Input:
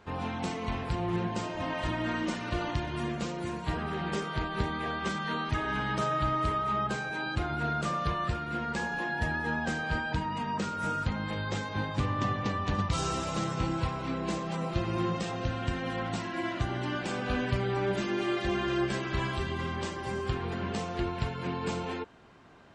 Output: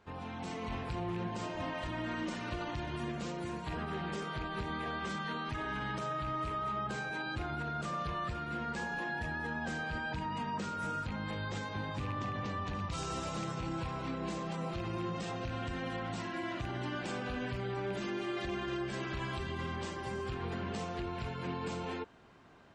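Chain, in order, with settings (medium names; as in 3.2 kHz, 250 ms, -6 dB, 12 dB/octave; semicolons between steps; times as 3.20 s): rattle on loud lows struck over -27 dBFS, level -28 dBFS; peak limiter -25.5 dBFS, peak gain reduction 9 dB; level rider gain up to 4.5 dB; trim -8 dB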